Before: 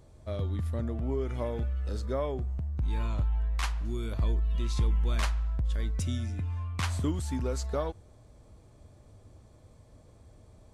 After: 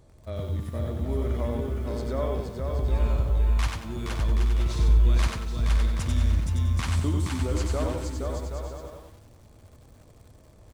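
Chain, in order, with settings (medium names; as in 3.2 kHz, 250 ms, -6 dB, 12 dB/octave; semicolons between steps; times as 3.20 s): bouncing-ball echo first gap 470 ms, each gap 0.65×, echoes 5; bit-crushed delay 93 ms, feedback 35%, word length 9-bit, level -3.5 dB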